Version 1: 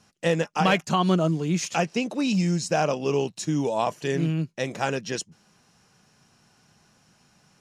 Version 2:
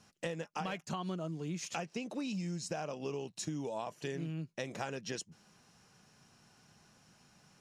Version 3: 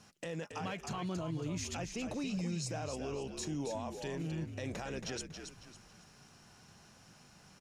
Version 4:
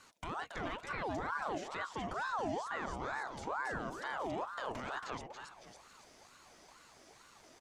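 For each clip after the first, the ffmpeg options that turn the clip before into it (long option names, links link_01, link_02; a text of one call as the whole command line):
ffmpeg -i in.wav -af "acompressor=threshold=-32dB:ratio=10,volume=-3.5dB" out.wav
ffmpeg -i in.wav -filter_complex "[0:a]alimiter=level_in=11dB:limit=-24dB:level=0:latency=1:release=17,volume=-11dB,asplit=2[link_01][link_02];[link_02]asplit=4[link_03][link_04][link_05][link_06];[link_03]adelay=276,afreqshift=-57,volume=-7dB[link_07];[link_04]adelay=552,afreqshift=-114,volume=-15.9dB[link_08];[link_05]adelay=828,afreqshift=-171,volume=-24.7dB[link_09];[link_06]adelay=1104,afreqshift=-228,volume=-33.6dB[link_10];[link_07][link_08][link_09][link_10]amix=inputs=4:normalize=0[link_11];[link_01][link_11]amix=inputs=2:normalize=0,volume=3.5dB" out.wav
ffmpeg -i in.wav -filter_complex "[0:a]acrossover=split=2700[link_01][link_02];[link_02]acompressor=threshold=-57dB:ratio=6[link_03];[link_01][link_03]amix=inputs=2:normalize=0,aeval=exprs='val(0)*sin(2*PI*880*n/s+880*0.5/2.2*sin(2*PI*2.2*n/s))':channel_layout=same,volume=2.5dB" out.wav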